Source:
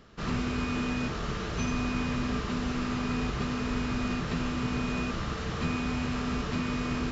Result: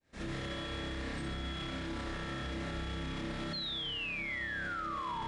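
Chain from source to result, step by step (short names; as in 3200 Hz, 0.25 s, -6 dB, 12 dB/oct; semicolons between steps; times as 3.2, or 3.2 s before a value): opening faded in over 0.58 s; spring tank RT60 1.4 s, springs 41 ms, chirp 70 ms, DRR -5.5 dB; speed mistake 33 rpm record played at 45 rpm; painted sound fall, 3.53–5.23, 870–4300 Hz -19 dBFS; reverse; upward compressor, threshold -30 dBFS; reverse; notch 1500 Hz, Q 20; de-hum 58.76 Hz, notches 20; on a send: narrowing echo 68 ms, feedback 48%, band-pass 1200 Hz, level -3 dB; on the sum: limiter -26 dBFS, peak gain reduction 18.5 dB; gain -5 dB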